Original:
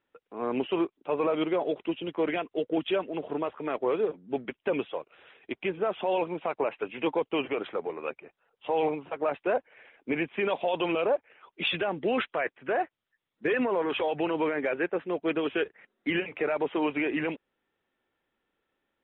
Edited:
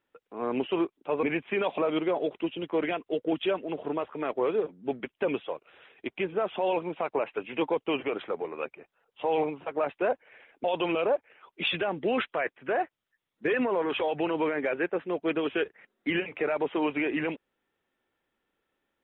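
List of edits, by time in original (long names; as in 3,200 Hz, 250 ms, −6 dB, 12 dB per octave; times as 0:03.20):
0:10.09–0:10.64: move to 0:01.23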